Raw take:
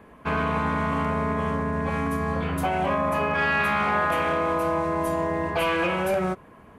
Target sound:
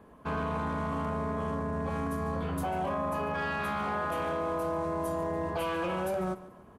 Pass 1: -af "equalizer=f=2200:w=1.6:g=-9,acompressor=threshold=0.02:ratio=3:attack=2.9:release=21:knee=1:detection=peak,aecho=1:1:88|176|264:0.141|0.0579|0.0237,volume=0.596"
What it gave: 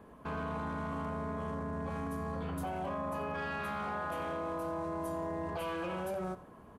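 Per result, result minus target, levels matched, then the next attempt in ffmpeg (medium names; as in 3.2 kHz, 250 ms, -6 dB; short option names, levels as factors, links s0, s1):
echo 56 ms early; compression: peak gain reduction +5.5 dB
-af "equalizer=f=2200:w=1.6:g=-9,acompressor=threshold=0.02:ratio=3:attack=2.9:release=21:knee=1:detection=peak,aecho=1:1:144|288|432:0.141|0.0579|0.0237,volume=0.596"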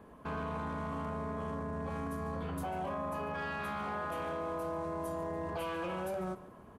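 compression: peak gain reduction +5.5 dB
-af "equalizer=f=2200:w=1.6:g=-9,acompressor=threshold=0.0531:ratio=3:attack=2.9:release=21:knee=1:detection=peak,aecho=1:1:144|288|432:0.141|0.0579|0.0237,volume=0.596"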